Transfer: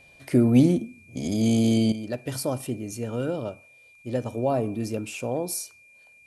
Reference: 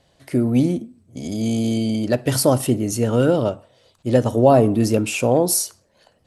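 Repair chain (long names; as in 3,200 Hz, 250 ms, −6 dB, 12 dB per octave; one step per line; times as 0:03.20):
notch filter 2,400 Hz, Q 30
downward expander −47 dBFS, range −21 dB
level 0 dB, from 0:01.92 +11.5 dB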